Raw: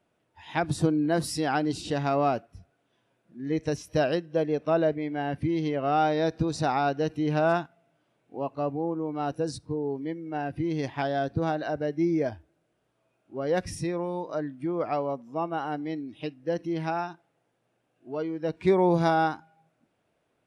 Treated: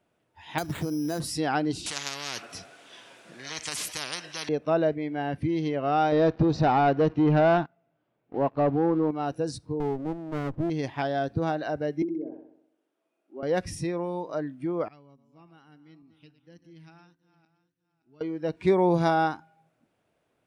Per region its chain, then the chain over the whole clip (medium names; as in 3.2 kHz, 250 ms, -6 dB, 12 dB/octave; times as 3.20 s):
0.58–1.20 s: compression, threshold -25 dBFS + careless resampling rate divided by 8×, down none, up hold
1.86–4.49 s: band-pass 140–6800 Hz + tilt EQ +3.5 dB/octave + spectrum-flattening compressor 10:1
6.12–9.11 s: waveshaping leveller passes 2 + low-pass 5.3 kHz 24 dB/octave + treble shelf 2.8 kHz -11.5 dB
9.80–10.70 s: resonant low-pass 630 Hz, resonance Q 1.8 + sliding maximum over 33 samples
12.02–13.43 s: low-pass that closes with the level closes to 330 Hz, closed at -22.5 dBFS + ladder high-pass 240 Hz, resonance 40% + flutter echo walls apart 10.9 m, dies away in 0.71 s
14.88–18.21 s: backward echo that repeats 286 ms, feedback 49%, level -13 dB + amplifier tone stack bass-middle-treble 6-0-2
whole clip: none